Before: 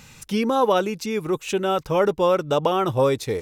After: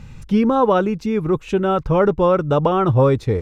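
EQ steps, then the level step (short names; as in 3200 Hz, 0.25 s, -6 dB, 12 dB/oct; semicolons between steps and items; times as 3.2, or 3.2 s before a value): RIAA curve playback; dynamic EQ 1300 Hz, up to +5 dB, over -36 dBFS, Q 1.5; 0.0 dB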